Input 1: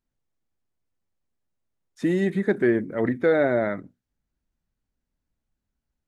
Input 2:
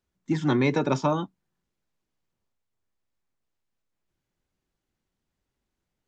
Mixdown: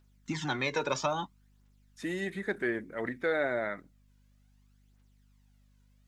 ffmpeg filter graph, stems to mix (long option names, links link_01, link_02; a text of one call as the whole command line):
ffmpeg -i stem1.wav -i stem2.wav -filter_complex "[0:a]volume=-8.5dB[link_01];[1:a]acompressor=threshold=-28dB:ratio=6,aphaser=in_gain=1:out_gain=1:delay=2.1:decay=0.51:speed=0.6:type=triangular,volume=1dB[link_02];[link_01][link_02]amix=inputs=2:normalize=0,tiltshelf=frequency=680:gain=-7,aeval=exprs='val(0)+0.000708*(sin(2*PI*50*n/s)+sin(2*PI*2*50*n/s)/2+sin(2*PI*3*50*n/s)/3+sin(2*PI*4*50*n/s)/4+sin(2*PI*5*50*n/s)/5)':channel_layout=same" out.wav